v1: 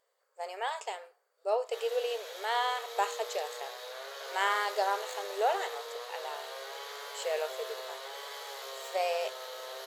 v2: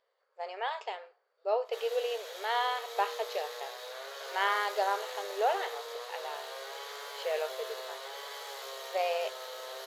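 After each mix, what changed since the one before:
speech: add low-pass filter 4,700 Hz 24 dB per octave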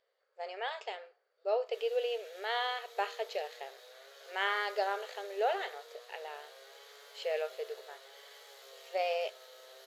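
background −10.5 dB
master: add parametric band 990 Hz −8.5 dB 0.58 octaves

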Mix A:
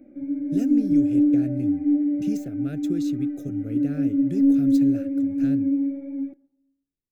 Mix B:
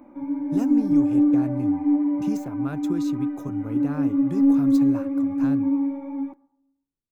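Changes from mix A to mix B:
background: add high-shelf EQ 2,100 Hz +9.5 dB
master: remove Butterworth band-reject 1,000 Hz, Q 0.94

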